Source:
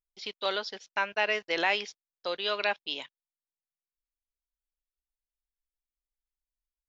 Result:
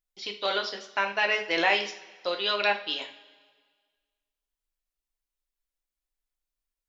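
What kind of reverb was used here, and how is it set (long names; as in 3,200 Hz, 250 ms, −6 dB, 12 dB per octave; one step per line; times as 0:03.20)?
coupled-rooms reverb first 0.34 s, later 1.6 s, from −18 dB, DRR 2 dB
level +1.5 dB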